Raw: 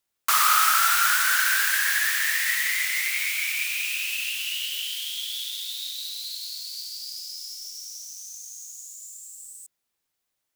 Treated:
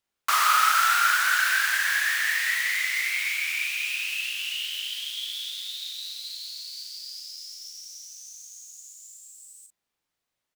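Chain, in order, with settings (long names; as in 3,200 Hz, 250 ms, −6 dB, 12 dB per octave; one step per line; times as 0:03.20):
high-shelf EQ 6,400 Hz −10 dB
double-tracking delay 39 ms −5.5 dB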